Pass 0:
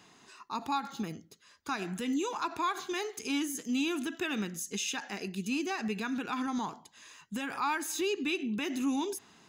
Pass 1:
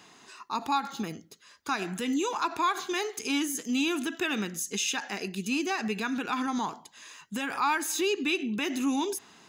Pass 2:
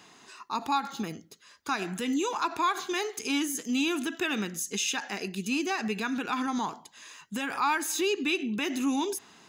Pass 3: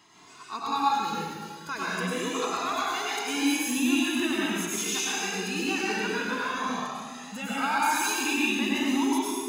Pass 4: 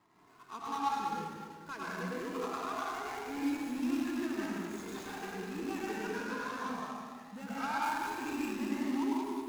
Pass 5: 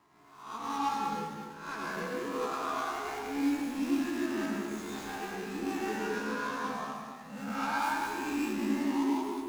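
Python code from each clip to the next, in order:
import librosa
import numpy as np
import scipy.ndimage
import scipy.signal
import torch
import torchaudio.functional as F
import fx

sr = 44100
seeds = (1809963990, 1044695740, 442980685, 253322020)

y1 = fx.low_shelf(x, sr, hz=190.0, db=-7.0)
y1 = F.gain(torch.from_numpy(y1), 5.0).numpy()
y2 = y1
y3 = fx.rev_plate(y2, sr, seeds[0], rt60_s=1.9, hf_ratio=1.0, predelay_ms=85, drr_db=-7.0)
y3 = fx.comb_cascade(y3, sr, direction='rising', hz=0.22)
y4 = scipy.ndimage.median_filter(y3, 15, mode='constant')
y4 = y4 + 10.0 ** (-8.5 / 20.0) * np.pad(y4, (int(199 * sr / 1000.0), 0))[:len(y4)]
y4 = F.gain(torch.from_numpy(y4), -7.5).numpy()
y5 = fx.spec_swells(y4, sr, rise_s=0.64)
y5 = fx.doubler(y5, sr, ms=14.0, db=-5.0)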